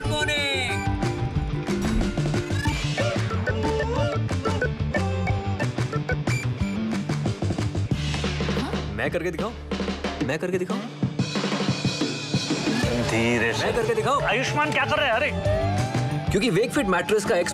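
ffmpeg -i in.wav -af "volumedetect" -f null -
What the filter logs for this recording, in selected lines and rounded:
mean_volume: -24.2 dB
max_volume: -12.4 dB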